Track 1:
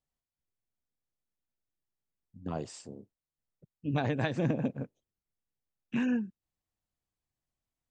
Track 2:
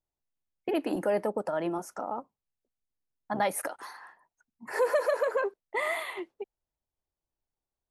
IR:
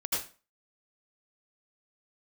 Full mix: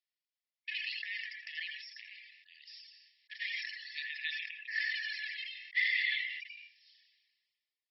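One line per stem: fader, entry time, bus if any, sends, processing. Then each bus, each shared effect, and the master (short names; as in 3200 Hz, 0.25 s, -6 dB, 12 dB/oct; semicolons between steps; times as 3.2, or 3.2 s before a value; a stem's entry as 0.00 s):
-0.5 dB, 0.00 s, send -10 dB, dry
-2.5 dB, 0.00 s, send -6 dB, sample leveller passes 2; auto duck -9 dB, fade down 0.35 s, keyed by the first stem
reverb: on, RT60 0.35 s, pre-delay 72 ms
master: reverb removal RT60 0.61 s; brick-wall FIR band-pass 1700–5600 Hz; sustainer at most 39 dB/s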